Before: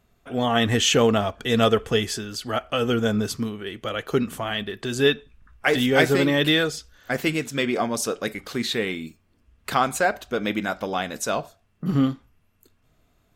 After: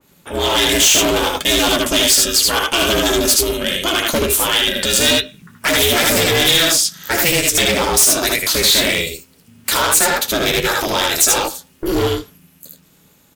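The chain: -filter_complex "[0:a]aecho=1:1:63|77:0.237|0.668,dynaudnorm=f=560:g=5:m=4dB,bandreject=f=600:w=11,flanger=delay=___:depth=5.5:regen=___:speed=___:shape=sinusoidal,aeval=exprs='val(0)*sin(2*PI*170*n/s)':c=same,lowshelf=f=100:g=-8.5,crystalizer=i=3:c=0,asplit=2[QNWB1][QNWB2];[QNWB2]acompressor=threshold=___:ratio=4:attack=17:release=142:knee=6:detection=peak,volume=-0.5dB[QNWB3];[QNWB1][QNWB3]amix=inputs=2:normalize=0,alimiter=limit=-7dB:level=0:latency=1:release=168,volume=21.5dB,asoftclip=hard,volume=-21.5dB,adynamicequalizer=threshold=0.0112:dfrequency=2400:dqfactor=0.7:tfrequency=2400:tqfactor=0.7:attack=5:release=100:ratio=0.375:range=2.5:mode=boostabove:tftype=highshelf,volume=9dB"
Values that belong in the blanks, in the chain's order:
7.9, -43, 1.3, -34dB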